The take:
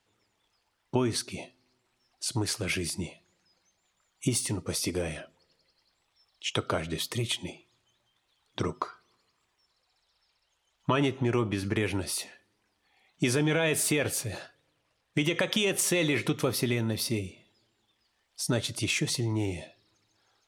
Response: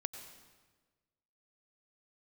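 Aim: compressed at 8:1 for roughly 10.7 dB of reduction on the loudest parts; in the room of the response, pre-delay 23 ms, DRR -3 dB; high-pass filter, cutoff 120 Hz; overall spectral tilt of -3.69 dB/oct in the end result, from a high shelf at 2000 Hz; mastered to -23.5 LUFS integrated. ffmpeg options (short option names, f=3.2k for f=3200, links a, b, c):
-filter_complex "[0:a]highpass=120,highshelf=f=2k:g=-3,acompressor=threshold=-34dB:ratio=8,asplit=2[a][b];[1:a]atrim=start_sample=2205,adelay=23[c];[b][c]afir=irnorm=-1:irlink=0,volume=4dB[d];[a][d]amix=inputs=2:normalize=0,volume=11dB"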